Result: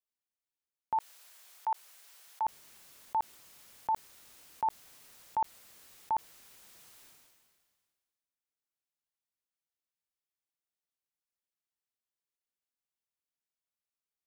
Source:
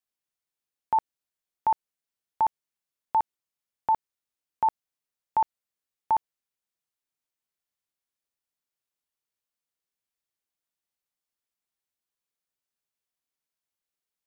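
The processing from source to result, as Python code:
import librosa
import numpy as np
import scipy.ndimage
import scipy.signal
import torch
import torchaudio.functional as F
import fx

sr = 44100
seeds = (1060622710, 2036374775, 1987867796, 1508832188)

y = fx.highpass(x, sr, hz=680.0, slope=12, at=(0.98, 2.43), fade=0.02)
y = fx.sustainer(y, sr, db_per_s=33.0)
y = y * 10.0 ** (-7.5 / 20.0)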